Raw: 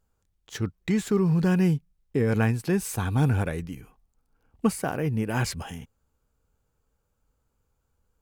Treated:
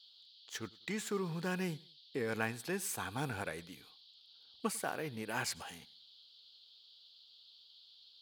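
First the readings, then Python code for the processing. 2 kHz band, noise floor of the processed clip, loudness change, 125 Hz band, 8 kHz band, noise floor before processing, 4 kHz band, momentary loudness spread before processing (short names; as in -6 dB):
-6.0 dB, -62 dBFS, -13.5 dB, -19.5 dB, -5.0 dB, -75 dBFS, -3.5 dB, 15 LU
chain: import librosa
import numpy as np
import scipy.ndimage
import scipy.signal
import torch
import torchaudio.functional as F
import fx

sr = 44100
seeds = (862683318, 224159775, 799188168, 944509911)

p1 = fx.highpass(x, sr, hz=780.0, slope=6)
p2 = fx.dmg_noise_band(p1, sr, seeds[0], low_hz=3100.0, high_hz=4700.0, level_db=-56.0)
p3 = p2 + fx.echo_feedback(p2, sr, ms=99, feedback_pct=32, wet_db=-23.5, dry=0)
y = p3 * librosa.db_to_amplitude(-5.0)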